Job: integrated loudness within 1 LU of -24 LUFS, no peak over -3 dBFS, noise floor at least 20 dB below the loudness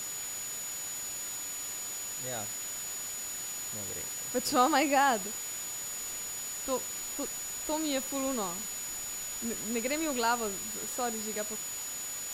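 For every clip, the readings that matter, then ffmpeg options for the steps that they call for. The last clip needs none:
steady tone 6900 Hz; tone level -37 dBFS; noise floor -38 dBFS; noise floor target -53 dBFS; loudness -32.5 LUFS; peak -14.0 dBFS; loudness target -24.0 LUFS
-> -af "bandreject=f=6.9k:w=30"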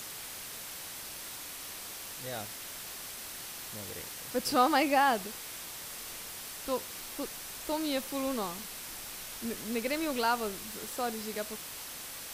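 steady tone none; noise floor -43 dBFS; noise floor target -55 dBFS
-> -af "afftdn=nr=12:nf=-43"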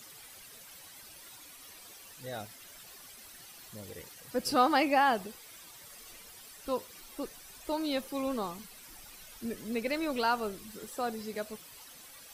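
noise floor -52 dBFS; noise floor target -53 dBFS
-> -af "afftdn=nr=6:nf=-52"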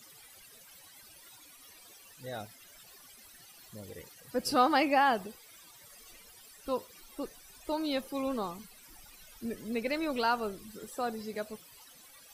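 noise floor -56 dBFS; loudness -32.5 LUFS; peak -14.0 dBFS; loudness target -24.0 LUFS
-> -af "volume=8.5dB"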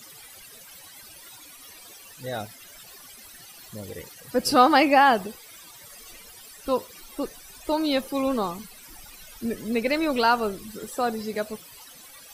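loudness -24.0 LUFS; peak -5.5 dBFS; noise floor -47 dBFS

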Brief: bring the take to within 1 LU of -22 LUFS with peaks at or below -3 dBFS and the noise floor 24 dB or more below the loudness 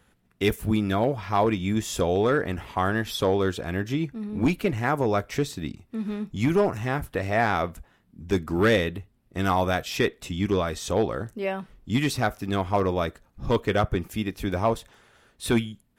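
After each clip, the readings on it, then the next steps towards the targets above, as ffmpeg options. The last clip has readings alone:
loudness -26.0 LUFS; peak -10.5 dBFS; loudness target -22.0 LUFS
-> -af "volume=4dB"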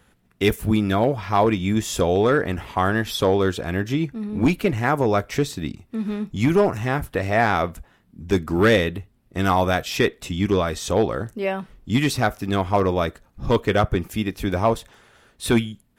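loudness -22.0 LUFS; peak -6.5 dBFS; noise floor -61 dBFS

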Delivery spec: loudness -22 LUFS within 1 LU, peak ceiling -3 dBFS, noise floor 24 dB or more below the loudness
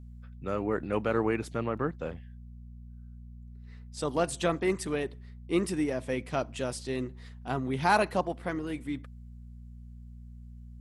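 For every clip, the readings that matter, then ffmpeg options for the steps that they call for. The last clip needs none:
hum 60 Hz; harmonics up to 240 Hz; hum level -44 dBFS; loudness -31.5 LUFS; peak -11.5 dBFS; loudness target -22.0 LUFS
-> -af "bandreject=f=60:t=h:w=4,bandreject=f=120:t=h:w=4,bandreject=f=180:t=h:w=4,bandreject=f=240:t=h:w=4"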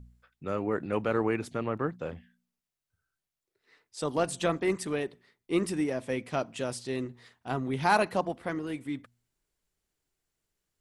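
hum none; loudness -31.5 LUFS; peak -11.0 dBFS; loudness target -22.0 LUFS
-> -af "volume=9.5dB,alimiter=limit=-3dB:level=0:latency=1"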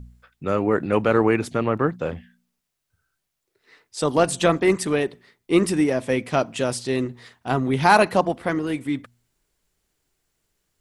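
loudness -22.0 LUFS; peak -3.0 dBFS; noise floor -79 dBFS

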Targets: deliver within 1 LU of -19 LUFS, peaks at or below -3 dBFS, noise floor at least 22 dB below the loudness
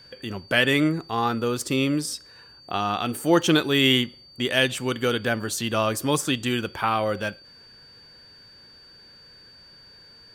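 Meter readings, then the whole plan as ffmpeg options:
steady tone 4600 Hz; tone level -48 dBFS; loudness -23.5 LUFS; peak -6.0 dBFS; loudness target -19.0 LUFS
-> -af "bandreject=f=4.6k:w=30"
-af "volume=4.5dB,alimiter=limit=-3dB:level=0:latency=1"

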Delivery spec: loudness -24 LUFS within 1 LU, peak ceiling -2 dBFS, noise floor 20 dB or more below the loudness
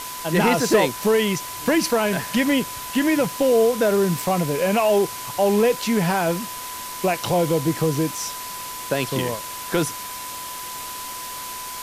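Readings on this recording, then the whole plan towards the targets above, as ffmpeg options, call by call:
steady tone 1000 Hz; tone level -34 dBFS; noise floor -33 dBFS; noise floor target -42 dBFS; loudness -22.0 LUFS; peak -6.5 dBFS; loudness target -24.0 LUFS
-> -af "bandreject=f=1k:w=30"
-af "afftdn=nr=9:nf=-33"
-af "volume=-2dB"

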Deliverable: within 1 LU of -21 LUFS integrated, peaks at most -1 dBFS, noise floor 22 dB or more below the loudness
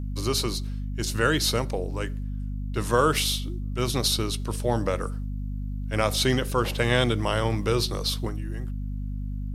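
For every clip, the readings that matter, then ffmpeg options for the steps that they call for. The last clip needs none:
hum 50 Hz; harmonics up to 250 Hz; hum level -28 dBFS; loudness -26.5 LUFS; peak -6.5 dBFS; loudness target -21.0 LUFS
-> -af "bandreject=f=50:t=h:w=6,bandreject=f=100:t=h:w=6,bandreject=f=150:t=h:w=6,bandreject=f=200:t=h:w=6,bandreject=f=250:t=h:w=6"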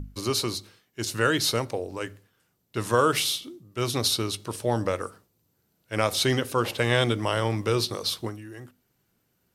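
hum none; loudness -26.5 LUFS; peak -7.5 dBFS; loudness target -21.0 LUFS
-> -af "volume=5.5dB"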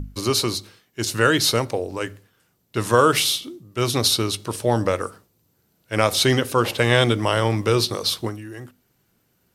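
loudness -21.0 LUFS; peak -2.0 dBFS; noise floor -67 dBFS

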